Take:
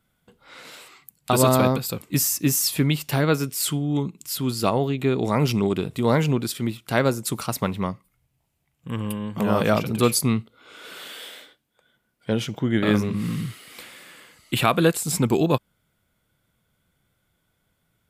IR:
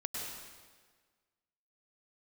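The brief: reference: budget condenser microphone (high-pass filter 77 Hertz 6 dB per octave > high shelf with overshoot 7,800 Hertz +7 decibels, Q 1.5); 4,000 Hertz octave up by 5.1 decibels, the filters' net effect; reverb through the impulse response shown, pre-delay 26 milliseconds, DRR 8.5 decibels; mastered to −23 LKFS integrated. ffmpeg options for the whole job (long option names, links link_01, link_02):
-filter_complex "[0:a]equalizer=frequency=4000:width_type=o:gain=8,asplit=2[link_01][link_02];[1:a]atrim=start_sample=2205,adelay=26[link_03];[link_02][link_03]afir=irnorm=-1:irlink=0,volume=-10.5dB[link_04];[link_01][link_04]amix=inputs=2:normalize=0,highpass=frequency=77:poles=1,highshelf=frequency=7800:width_type=q:width=1.5:gain=7,volume=-3dB"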